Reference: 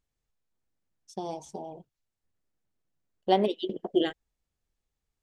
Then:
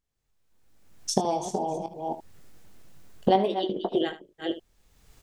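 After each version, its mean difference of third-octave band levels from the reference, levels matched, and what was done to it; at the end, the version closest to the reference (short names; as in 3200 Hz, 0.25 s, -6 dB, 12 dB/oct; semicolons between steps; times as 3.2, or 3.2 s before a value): 7.0 dB: reverse delay 0.266 s, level -13 dB; recorder AGC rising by 28 dB/s; dynamic EQ 920 Hz, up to +4 dB, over -37 dBFS, Q 0.85; on a send: early reflections 21 ms -9 dB, 75 ms -13.5 dB; on the sum: gain -2.5 dB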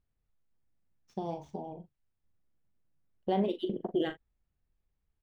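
4.0 dB: median filter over 5 samples; tone controls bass +7 dB, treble -12 dB; limiter -18 dBFS, peak gain reduction 7.5 dB; doubler 41 ms -10.5 dB; gain -2.5 dB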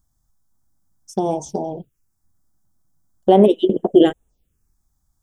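2.5 dB: graphic EQ 1000/2000/4000 Hz -3/-11/+3 dB; envelope phaser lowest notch 460 Hz, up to 4800 Hz, full sweep at -33.5 dBFS; bell 4200 Hz -9 dB 0.4 oct; maximiser +17.5 dB; gain -1 dB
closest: third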